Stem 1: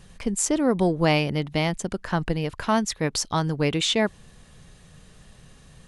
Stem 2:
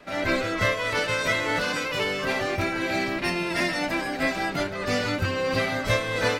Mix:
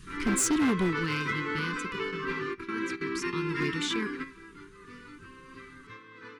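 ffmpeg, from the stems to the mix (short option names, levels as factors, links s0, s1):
-filter_complex "[0:a]volume=2.82,afade=t=out:st=0.66:d=0.37:silence=0.298538,afade=t=out:st=1.83:d=0.37:silence=0.398107,afade=t=in:st=3:d=0.57:silence=0.354813,asplit=2[s0][s1];[1:a]bandpass=f=640:t=q:w=0.98:csg=0,volume=1.26[s2];[s1]apad=whole_len=281982[s3];[s2][s3]sidechaingate=range=0.178:threshold=0.00355:ratio=16:detection=peak[s4];[s0][s4]amix=inputs=2:normalize=0,asuperstop=centerf=660:order=8:qfactor=1.1,asoftclip=type=hard:threshold=0.0841"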